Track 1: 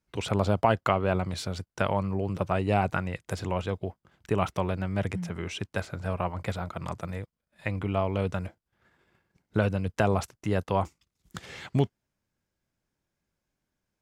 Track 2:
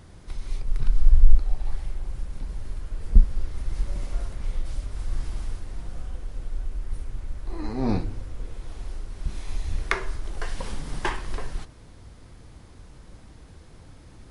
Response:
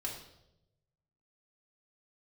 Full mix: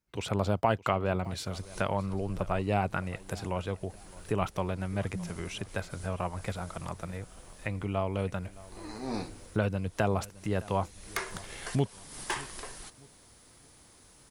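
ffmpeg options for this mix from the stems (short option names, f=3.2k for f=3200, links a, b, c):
-filter_complex "[0:a]volume=-3.5dB,asplit=3[a][b][c];[b]volume=-20.5dB[d];[1:a]aemphasis=mode=production:type=bsi,asoftclip=type=hard:threshold=-17.5dB,adelay=1250,volume=-5.5dB[e];[c]apad=whole_len=686079[f];[e][f]sidechaincompress=threshold=-39dB:ratio=8:attack=41:release=325[g];[d]aecho=0:1:614|1228|1842|2456|3070:1|0.36|0.13|0.0467|0.0168[h];[a][g][h]amix=inputs=3:normalize=0,highshelf=f=8.9k:g=4.5"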